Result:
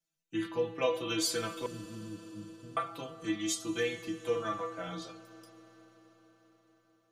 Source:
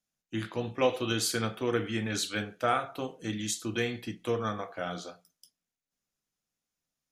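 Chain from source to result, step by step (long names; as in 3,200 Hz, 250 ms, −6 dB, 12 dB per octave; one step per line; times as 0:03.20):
stiff-string resonator 160 Hz, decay 0.24 s, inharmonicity 0.002
0:01.66–0:02.77: inverse Chebyshev low-pass filter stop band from 1,500 Hz, stop band 80 dB
convolution reverb RT60 5.7 s, pre-delay 81 ms, DRR 14 dB
level +8.5 dB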